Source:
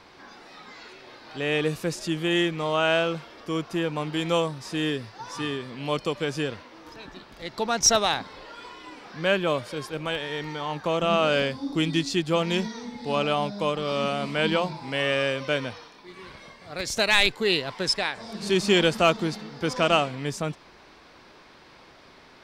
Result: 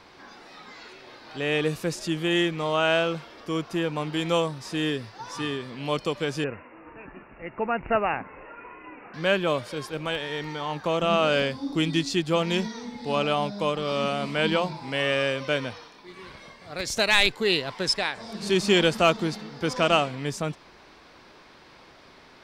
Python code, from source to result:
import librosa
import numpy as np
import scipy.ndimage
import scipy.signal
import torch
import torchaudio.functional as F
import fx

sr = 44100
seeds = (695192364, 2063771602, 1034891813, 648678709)

y = fx.cheby1_lowpass(x, sr, hz=2800.0, order=10, at=(6.44, 9.14))